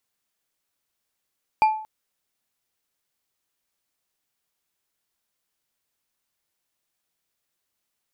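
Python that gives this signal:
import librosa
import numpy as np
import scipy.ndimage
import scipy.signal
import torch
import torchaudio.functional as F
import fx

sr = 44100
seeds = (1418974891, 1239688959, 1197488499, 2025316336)

y = fx.strike_glass(sr, length_s=0.23, level_db=-11.5, body='bar', hz=868.0, decay_s=0.52, tilt_db=12.0, modes=5)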